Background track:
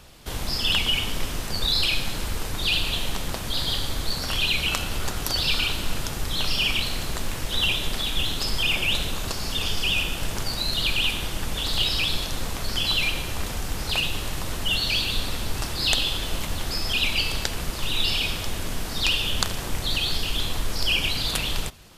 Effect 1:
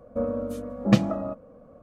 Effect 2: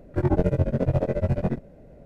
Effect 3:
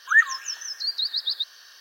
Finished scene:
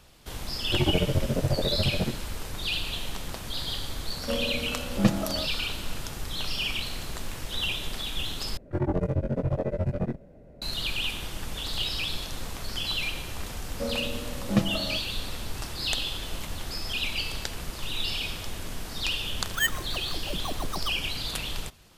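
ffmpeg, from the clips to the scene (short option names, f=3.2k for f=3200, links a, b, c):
-filter_complex "[2:a]asplit=2[a][b];[1:a]asplit=2[c][d];[0:a]volume=-6.5dB[e];[b]asoftclip=type=tanh:threshold=-16dB[f];[3:a]acrusher=samples=9:mix=1:aa=0.000001[g];[e]asplit=2[h][i];[h]atrim=end=8.574[j];[f]atrim=end=2.05,asetpts=PTS-STARTPTS,volume=-2.5dB[k];[i]atrim=start=10.616[l];[a]atrim=end=2.05,asetpts=PTS-STARTPTS,volume=-3.5dB,afade=t=in:d=0.004:c=hsin,afade=t=out:st=2.046:d=0.004:c=hsin,adelay=560[m];[c]atrim=end=1.82,asetpts=PTS-STARTPTS,volume=-3.5dB,afade=t=in:d=0.004:c=hsin,afade=t=out:st=1.816:d=0.004:c=hsin,adelay=4120[n];[d]atrim=end=1.82,asetpts=PTS-STARTPTS,volume=-5dB,afade=t=in:d=0.004:c=hsin,afade=t=out:st=1.816:d=0.004:c=hsin,adelay=601524S[o];[g]atrim=end=1.8,asetpts=PTS-STARTPTS,volume=-9dB,afade=t=in:d=0.004:c=hsin,afade=t=out:st=1.796:d=0.004:c=hsin,adelay=19460[p];[j][k]acrossfade=d=0.004:c1=hsin:c2=hsin[q];[q][l]acrossfade=d=0.004:c1=hsin:c2=hsin[r];[r][m][n][o][p]amix=inputs=5:normalize=0"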